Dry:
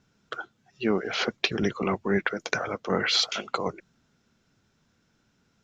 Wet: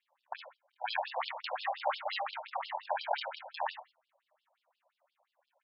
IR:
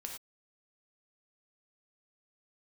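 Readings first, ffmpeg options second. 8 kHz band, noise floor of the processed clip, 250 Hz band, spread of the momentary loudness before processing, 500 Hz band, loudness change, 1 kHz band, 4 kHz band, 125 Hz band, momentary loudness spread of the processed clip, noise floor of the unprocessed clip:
below −40 dB, below −85 dBFS, below −40 dB, 16 LU, −11.0 dB, −10.0 dB, −0.5 dB, −13.0 dB, below −40 dB, 13 LU, −70 dBFS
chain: -filter_complex "[0:a]acrusher=samples=39:mix=1:aa=0.000001:lfo=1:lforange=39:lforate=0.39,asplit=2[link_01][link_02];[1:a]atrim=start_sample=2205,atrim=end_sample=4410,adelay=25[link_03];[link_02][link_03]afir=irnorm=-1:irlink=0,volume=0.5dB[link_04];[link_01][link_04]amix=inputs=2:normalize=0,aeval=exprs='val(0)*sin(2*PI*400*n/s)':channel_layout=same,afftfilt=real='re*between(b*sr/1024,710*pow(3900/710,0.5+0.5*sin(2*PI*5.7*pts/sr))/1.41,710*pow(3900/710,0.5+0.5*sin(2*PI*5.7*pts/sr))*1.41)':imag='im*between(b*sr/1024,710*pow(3900/710,0.5+0.5*sin(2*PI*5.7*pts/sr))/1.41,710*pow(3900/710,0.5+0.5*sin(2*PI*5.7*pts/sr))*1.41)':win_size=1024:overlap=0.75,volume=1.5dB"

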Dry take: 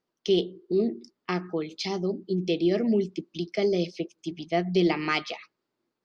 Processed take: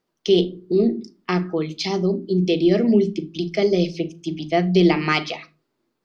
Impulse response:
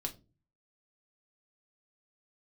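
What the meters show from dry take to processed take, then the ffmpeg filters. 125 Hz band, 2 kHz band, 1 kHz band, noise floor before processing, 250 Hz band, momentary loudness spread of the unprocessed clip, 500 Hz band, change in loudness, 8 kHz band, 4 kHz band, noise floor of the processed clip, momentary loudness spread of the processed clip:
+9.5 dB, +6.0 dB, +6.0 dB, −83 dBFS, +7.5 dB, 11 LU, +6.5 dB, +7.0 dB, can't be measured, +6.0 dB, −76 dBFS, 11 LU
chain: -filter_complex "[0:a]asplit=2[link_01][link_02];[link_02]bass=frequency=250:gain=10,treble=frequency=4000:gain=-6[link_03];[1:a]atrim=start_sample=2205,adelay=38[link_04];[link_03][link_04]afir=irnorm=-1:irlink=0,volume=-13.5dB[link_05];[link_01][link_05]amix=inputs=2:normalize=0,volume=6dB"

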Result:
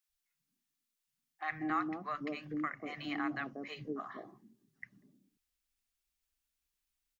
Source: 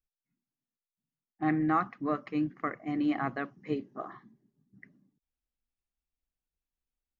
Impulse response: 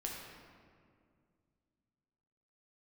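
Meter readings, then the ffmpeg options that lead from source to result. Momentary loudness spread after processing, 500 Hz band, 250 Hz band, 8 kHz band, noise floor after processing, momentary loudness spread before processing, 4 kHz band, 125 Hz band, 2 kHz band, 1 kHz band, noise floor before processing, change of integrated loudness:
19 LU, −8.0 dB, −8.5 dB, can't be measured, below −85 dBFS, 11 LU, +3.5 dB, −11.0 dB, −1.0 dB, −5.5 dB, below −85 dBFS, −7.0 dB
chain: -filter_complex "[0:a]tiltshelf=frequency=1200:gain=-5.5,acrossover=split=160|620[link_01][link_02][link_03];[link_01]adelay=90[link_04];[link_02]adelay=190[link_05];[link_04][link_05][link_03]amix=inputs=3:normalize=0,acompressor=threshold=-50dB:ratio=1.5,volume=4dB"

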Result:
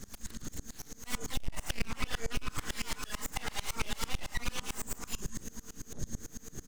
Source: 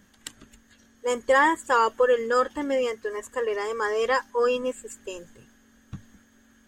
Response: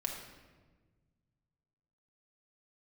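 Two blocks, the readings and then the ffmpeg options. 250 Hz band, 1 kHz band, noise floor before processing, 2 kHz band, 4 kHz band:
−10.0 dB, −19.0 dB, −60 dBFS, −13.0 dB, −2.5 dB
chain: -filter_complex "[0:a]acrossover=split=3700[link_01][link_02];[link_02]acompressor=threshold=-54dB:ratio=4:attack=1:release=60[link_03];[link_01][link_03]amix=inputs=2:normalize=0,afftfilt=real='re*(1-between(b*sr/4096,240,920))':imag='im*(1-between(b*sr/4096,240,920))':win_size=4096:overlap=0.75,aemphasis=mode=reproduction:type=bsi,asplit=2[link_04][link_05];[link_05]adelay=35,volume=-3dB[link_06];[link_04][link_06]amix=inputs=2:normalize=0,asplit=2[link_07][link_08];[link_08]aecho=0:1:79|158|237|316|395:0.119|0.0642|0.0347|0.0187|0.0101[link_09];[link_07][link_09]amix=inputs=2:normalize=0,aexciter=amount=12.6:drive=2.8:freq=4200,asplit=2[link_10][link_11];[link_11]adelay=601,lowpass=frequency=3900:poles=1,volume=-20dB,asplit=2[link_12][link_13];[link_13]adelay=601,lowpass=frequency=3900:poles=1,volume=0.16[link_14];[link_12][link_14]amix=inputs=2:normalize=0[link_15];[link_10][link_15]amix=inputs=2:normalize=0,aeval=exprs='abs(val(0))':channel_layout=same,bandreject=frequency=299.4:width_type=h:width=4,bandreject=frequency=598.8:width_type=h:width=4,bandreject=frequency=898.2:width_type=h:width=4,bandreject=frequency=1197.6:width_type=h:width=4,bandreject=frequency=1497:width_type=h:width=4,acrossover=split=360[link_16][link_17];[link_17]acompressor=threshold=-33dB:ratio=4[link_18];[link_16][link_18]amix=inputs=2:normalize=0,asoftclip=type=tanh:threshold=-31dB,aeval=exprs='val(0)*pow(10,-26*if(lt(mod(-9*n/s,1),2*abs(-9)/1000),1-mod(-9*n/s,1)/(2*abs(-9)/1000),(mod(-9*n/s,1)-2*abs(-9)/1000)/(1-2*abs(-9)/1000))/20)':channel_layout=same,volume=10.5dB"

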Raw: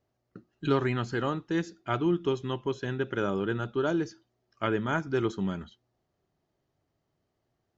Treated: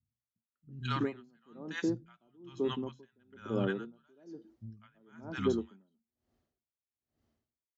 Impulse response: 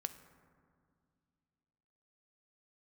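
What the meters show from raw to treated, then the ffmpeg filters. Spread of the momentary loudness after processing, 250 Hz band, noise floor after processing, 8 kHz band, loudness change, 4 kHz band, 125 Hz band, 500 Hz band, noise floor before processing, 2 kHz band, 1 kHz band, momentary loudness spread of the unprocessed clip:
19 LU, −6.5 dB, below −85 dBFS, can't be measured, −5.5 dB, −5.5 dB, −8.5 dB, −7.5 dB, −80 dBFS, −9.0 dB, −10.0 dB, 7 LU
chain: -filter_complex "[0:a]asubboost=boost=4.5:cutoff=72,highpass=57,equalizer=frequency=230:width_type=o:width=0.32:gain=13.5,acrossover=split=160|880[link_01][link_02][link_03];[link_03]adelay=200[link_04];[link_02]adelay=330[link_05];[link_01][link_05][link_04]amix=inputs=3:normalize=0,aeval=exprs='val(0)*pow(10,-37*(0.5-0.5*cos(2*PI*1.1*n/s))/20)':channel_layout=same"

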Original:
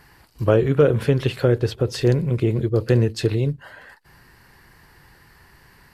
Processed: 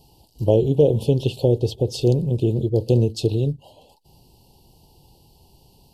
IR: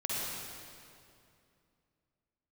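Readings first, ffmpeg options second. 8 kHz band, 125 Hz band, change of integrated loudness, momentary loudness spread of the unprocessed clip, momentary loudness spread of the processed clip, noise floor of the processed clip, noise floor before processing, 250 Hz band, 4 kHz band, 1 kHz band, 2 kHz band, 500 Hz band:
0.0 dB, 0.0 dB, 0.0 dB, 6 LU, 6 LU, −56 dBFS, −53 dBFS, 0.0 dB, −0.5 dB, −5.0 dB, below −15 dB, 0.0 dB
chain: -af "asuperstop=centerf=1600:order=12:qfactor=0.82"

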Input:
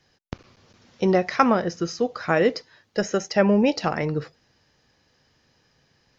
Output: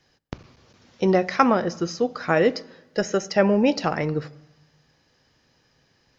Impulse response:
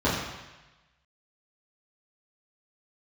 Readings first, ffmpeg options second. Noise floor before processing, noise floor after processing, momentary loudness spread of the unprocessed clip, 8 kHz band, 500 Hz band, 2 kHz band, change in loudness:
−66 dBFS, −65 dBFS, 19 LU, can't be measured, +0.5 dB, 0.0 dB, +0.5 dB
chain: -filter_complex "[0:a]asplit=2[link_01][link_02];[1:a]atrim=start_sample=2205,asetrate=43659,aresample=44100[link_03];[link_02][link_03]afir=irnorm=-1:irlink=0,volume=-33.5dB[link_04];[link_01][link_04]amix=inputs=2:normalize=0"

